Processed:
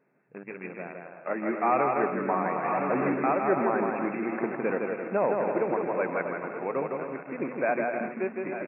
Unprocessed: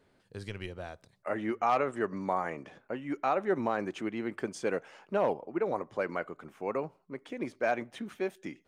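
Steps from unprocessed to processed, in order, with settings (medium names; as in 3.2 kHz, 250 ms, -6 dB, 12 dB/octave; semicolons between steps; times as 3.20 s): backward echo that repeats 508 ms, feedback 65%, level -11.5 dB; 2.64–3.10 s: waveshaping leveller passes 3; in parallel at -4 dB: word length cut 6-bit, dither none; on the sum: bouncing-ball echo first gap 160 ms, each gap 0.65×, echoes 5; FFT band-pass 120–2700 Hz; trim -2 dB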